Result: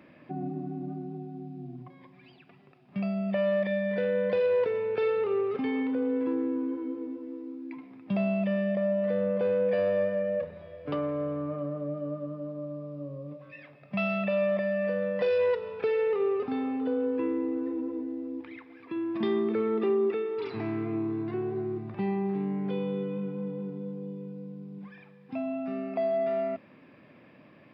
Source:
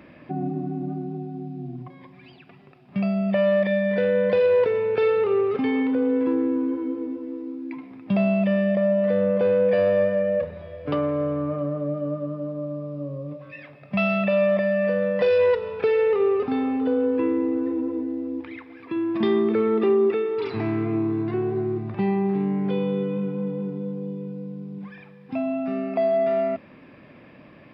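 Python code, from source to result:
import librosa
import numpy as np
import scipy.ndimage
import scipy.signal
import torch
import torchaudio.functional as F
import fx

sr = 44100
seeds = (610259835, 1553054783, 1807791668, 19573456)

y = scipy.signal.sosfilt(scipy.signal.butter(2, 100.0, 'highpass', fs=sr, output='sos'), x)
y = y * 10.0 ** (-6.5 / 20.0)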